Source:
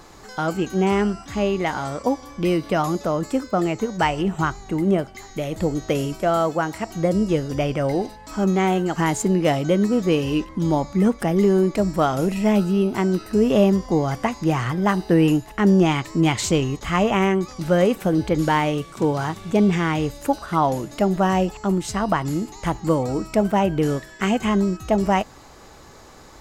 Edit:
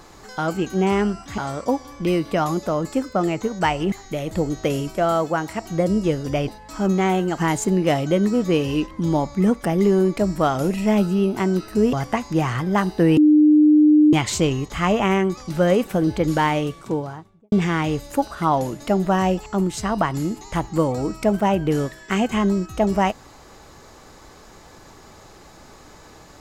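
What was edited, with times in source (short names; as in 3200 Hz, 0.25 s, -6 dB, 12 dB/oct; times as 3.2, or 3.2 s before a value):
1.38–1.76 cut
4.3–5.17 cut
7.73–8.06 cut
13.51–14.04 cut
15.28–16.24 bleep 302 Hz -9.5 dBFS
18.69–19.63 studio fade out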